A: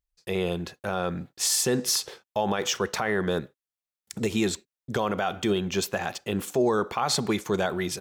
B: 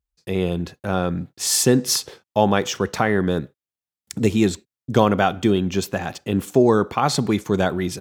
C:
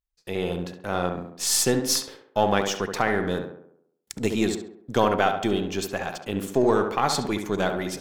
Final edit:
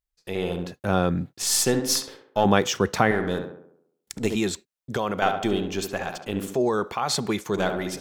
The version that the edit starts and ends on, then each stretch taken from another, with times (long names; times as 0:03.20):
C
0:00.72–0:01.42: punch in from B
0:02.45–0:03.11: punch in from B
0:04.36–0:05.22: punch in from A
0:06.55–0:07.56: punch in from A